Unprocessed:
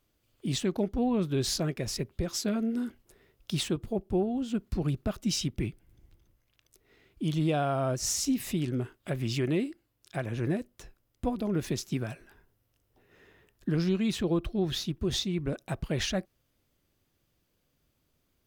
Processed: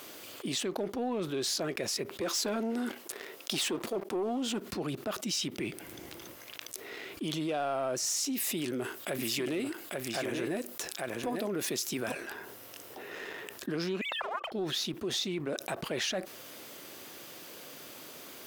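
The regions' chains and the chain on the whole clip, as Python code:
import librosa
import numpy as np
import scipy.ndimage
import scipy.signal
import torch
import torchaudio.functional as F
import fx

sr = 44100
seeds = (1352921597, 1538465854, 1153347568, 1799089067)

y = fx.chain(x, sr, fx.highpass(hz=210.0, slope=12),
    fx.leveller(passes=2), at=(2.21, 4.6))
y = fx.chain(y, sr, fx.high_shelf(hz=7000.0, db=9.0),
    fx.echo_single(ms=844, db=-8.0), at=(8.34, 12.12))
y = fx.chain(y, sr, fx.sine_speech(),
    fx.steep_highpass(hz=510.0, slope=72),
    fx.doppler_dist(depth_ms=0.36), at=(14.01, 14.52))
y = scipy.signal.sosfilt(scipy.signal.butter(2, 360.0, 'highpass', fs=sr, output='sos'), y)
y = fx.leveller(y, sr, passes=1)
y = fx.env_flatten(y, sr, amount_pct=70)
y = y * 10.0 ** (-7.5 / 20.0)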